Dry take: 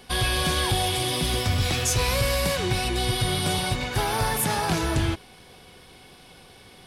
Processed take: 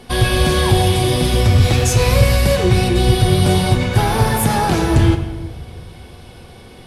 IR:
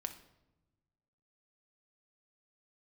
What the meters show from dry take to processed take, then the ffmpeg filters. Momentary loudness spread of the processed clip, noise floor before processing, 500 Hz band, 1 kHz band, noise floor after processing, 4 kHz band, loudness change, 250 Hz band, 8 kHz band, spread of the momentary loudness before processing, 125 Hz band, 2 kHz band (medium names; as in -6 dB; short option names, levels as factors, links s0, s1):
3 LU, -50 dBFS, +11.0 dB, +7.5 dB, -40 dBFS, +4.0 dB, +9.0 dB, +12.0 dB, +3.5 dB, 3 LU, +13.0 dB, +5.5 dB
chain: -filter_complex "[0:a]tiltshelf=f=920:g=4[s0];[1:a]atrim=start_sample=2205,asetrate=26460,aresample=44100[s1];[s0][s1]afir=irnorm=-1:irlink=0,volume=2.11"